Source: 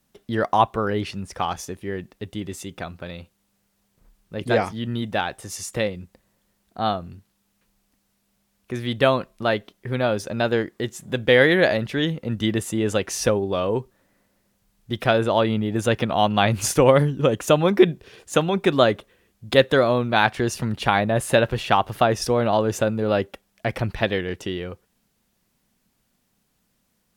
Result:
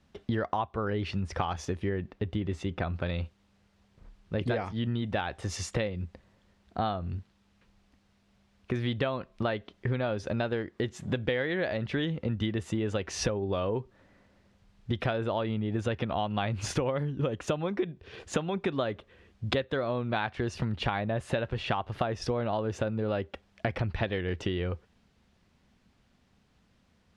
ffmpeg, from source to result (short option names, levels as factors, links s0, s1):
-filter_complex "[0:a]asettb=1/sr,asplit=3[s0][s1][s2];[s0]atrim=end=1.894[s3];[s1]atrim=start=1.89:end=2.94,asetpts=PTS-STARTPTS,afade=t=in:d=0.004:c=qsin,afade=t=out:st=1.046:d=0.004:c=qsin,highshelf=f=3900:g=-10[s4];[s2]atrim=start=2.936[s5];[s3][s4]acrossfade=d=0.004:c1=hsin:c2=qsin[s6];[s6][s5]acrossfade=d=0.004:c1=qsin:c2=hsin,lowpass=4100,equalizer=f=78:t=o:w=0.68:g=9.5,acompressor=threshold=0.0316:ratio=12,volume=1.5"